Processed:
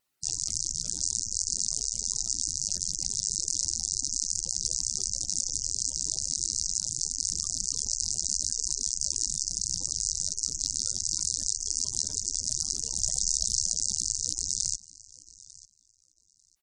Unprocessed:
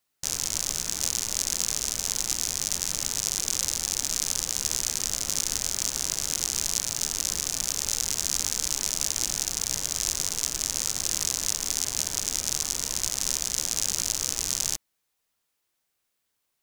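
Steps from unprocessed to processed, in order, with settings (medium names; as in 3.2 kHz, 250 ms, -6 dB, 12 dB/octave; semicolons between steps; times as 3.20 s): feedback delay 896 ms, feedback 17%, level -21 dB; spectral gate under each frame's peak -10 dB strong; 5.20–5.86 s: de-hum 72.6 Hz, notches 10; vibrato 5.8 Hz 35 cents; 12.98–13.72 s: comb 1.6 ms, depth 90%; loudspeaker Doppler distortion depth 0.4 ms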